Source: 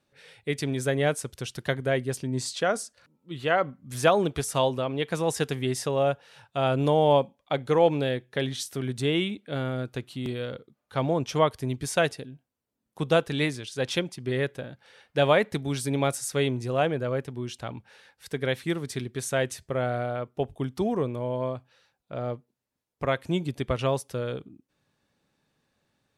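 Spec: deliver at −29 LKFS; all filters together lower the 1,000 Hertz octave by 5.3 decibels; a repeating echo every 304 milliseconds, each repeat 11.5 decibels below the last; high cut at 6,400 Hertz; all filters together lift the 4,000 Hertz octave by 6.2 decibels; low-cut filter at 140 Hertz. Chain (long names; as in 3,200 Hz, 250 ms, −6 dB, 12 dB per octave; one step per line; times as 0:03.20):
high-pass filter 140 Hz
low-pass filter 6,400 Hz
parametric band 1,000 Hz −8.5 dB
parametric band 4,000 Hz +9 dB
repeating echo 304 ms, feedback 27%, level −11.5 dB
level −0.5 dB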